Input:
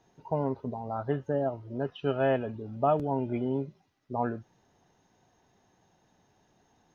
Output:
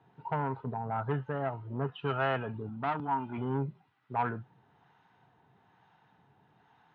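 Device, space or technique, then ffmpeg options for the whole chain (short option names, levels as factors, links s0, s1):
guitar amplifier with harmonic tremolo: -filter_complex "[0:a]acrossover=split=680[s0][s1];[s0]aeval=exprs='val(0)*(1-0.5/2+0.5/2*cos(2*PI*1.1*n/s))':c=same[s2];[s1]aeval=exprs='val(0)*(1-0.5/2-0.5/2*cos(2*PI*1.1*n/s))':c=same[s3];[s2][s3]amix=inputs=2:normalize=0,asoftclip=type=tanh:threshold=0.0422,highpass=110,equalizer=f=130:t=q:w=4:g=6,equalizer=f=240:t=q:w=4:g=-5,equalizer=f=350:t=q:w=4:g=-6,equalizer=f=580:t=q:w=4:g=-9,equalizer=f=910:t=q:w=4:g=5,equalizer=f=1400:t=q:w=4:g=6,lowpass=f=3400:w=0.5412,lowpass=f=3400:w=1.3066,asettb=1/sr,asplit=3[s4][s5][s6];[s4]atrim=end=2.694[s7];[s5]atrim=start=2.69:end=3.38,asetpts=PTS-STARTPTS,afade=t=in:d=0.004:c=qsin,afade=t=out:st=0.686:d=0.004:c=qsin,equalizer=f=125:t=o:w=1:g=-9,equalizer=f=250:t=o:w=1:g=5,equalizer=f=500:t=o:w=1:g=-12,equalizer=f=1000:t=o:w=1:g=5,equalizer=f=2000:t=o:w=1:g=-5[s8];[s6]atrim=start=3.376[s9];[s7][s8]acrossfade=d=0.004:c1=hsin:c2=qsin[s10];[s10][s9]acrossfade=d=0.004:c1=qsin:c2=hsin,volume=1.68"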